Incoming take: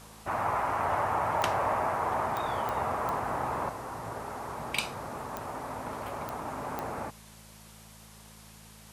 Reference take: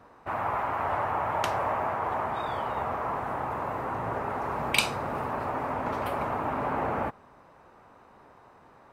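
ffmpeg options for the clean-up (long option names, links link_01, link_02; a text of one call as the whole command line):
ffmpeg -i in.wav -af "adeclick=threshold=4,bandreject=frequency=54.1:width_type=h:width=4,bandreject=frequency=108.2:width_type=h:width=4,bandreject=frequency=162.3:width_type=h:width=4,bandreject=frequency=216.4:width_type=h:width=4,afwtdn=0.0022,asetnsamples=nb_out_samples=441:pad=0,asendcmd='3.69 volume volume 7dB',volume=0dB" out.wav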